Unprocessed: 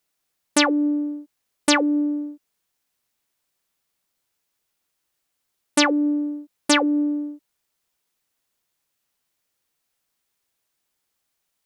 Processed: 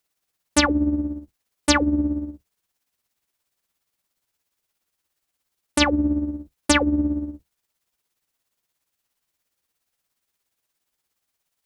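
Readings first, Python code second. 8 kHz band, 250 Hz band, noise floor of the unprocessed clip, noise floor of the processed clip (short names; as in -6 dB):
0.0 dB, -1.0 dB, -77 dBFS, -81 dBFS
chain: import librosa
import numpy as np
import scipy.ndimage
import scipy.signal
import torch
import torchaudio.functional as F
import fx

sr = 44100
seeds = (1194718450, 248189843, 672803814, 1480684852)

y = fx.octave_divider(x, sr, octaves=2, level_db=-5.0)
y = y * (1.0 - 0.53 / 2.0 + 0.53 / 2.0 * np.cos(2.0 * np.pi * 17.0 * (np.arange(len(y)) / sr)))
y = y * librosa.db_to_amplitude(1.5)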